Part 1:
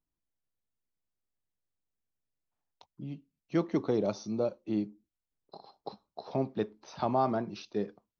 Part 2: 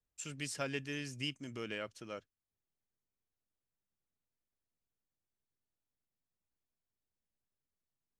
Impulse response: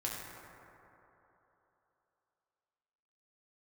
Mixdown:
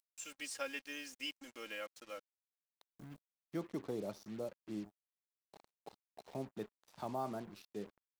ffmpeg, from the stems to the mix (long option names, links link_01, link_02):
-filter_complex "[0:a]highpass=48,volume=-12dB,asplit=2[link_01][link_02];[1:a]highpass=440,aecho=1:1:3.7:0.78,acompressor=mode=upward:threshold=-47dB:ratio=2.5,volume=-4.5dB[link_03];[link_02]apad=whole_len=361522[link_04];[link_03][link_04]sidechaincompress=threshold=-51dB:ratio=8:attack=7.2:release=1440[link_05];[link_01][link_05]amix=inputs=2:normalize=0,acrusher=bits=8:mix=0:aa=0.5"